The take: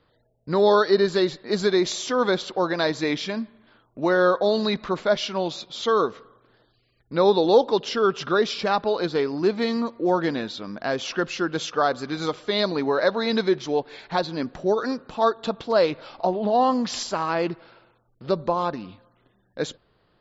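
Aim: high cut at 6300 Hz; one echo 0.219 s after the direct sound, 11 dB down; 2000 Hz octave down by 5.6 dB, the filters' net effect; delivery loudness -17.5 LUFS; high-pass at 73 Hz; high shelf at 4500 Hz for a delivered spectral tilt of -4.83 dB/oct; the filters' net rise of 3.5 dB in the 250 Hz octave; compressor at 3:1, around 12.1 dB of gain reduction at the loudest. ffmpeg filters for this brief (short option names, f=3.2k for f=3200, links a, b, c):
-af "highpass=73,lowpass=6.3k,equalizer=f=250:t=o:g=5,equalizer=f=2k:t=o:g=-7.5,highshelf=f=4.5k:g=-4,acompressor=threshold=-28dB:ratio=3,aecho=1:1:219:0.282,volume=13dB"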